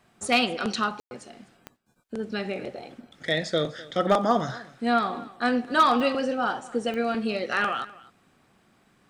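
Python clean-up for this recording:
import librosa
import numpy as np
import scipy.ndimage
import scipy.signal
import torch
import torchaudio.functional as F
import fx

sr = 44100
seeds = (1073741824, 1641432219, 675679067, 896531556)

y = fx.fix_declip(x, sr, threshold_db=-12.0)
y = fx.fix_declick_ar(y, sr, threshold=10.0)
y = fx.fix_ambience(y, sr, seeds[0], print_start_s=1.62, print_end_s=2.12, start_s=1.0, end_s=1.11)
y = fx.fix_echo_inverse(y, sr, delay_ms=252, level_db=-20.5)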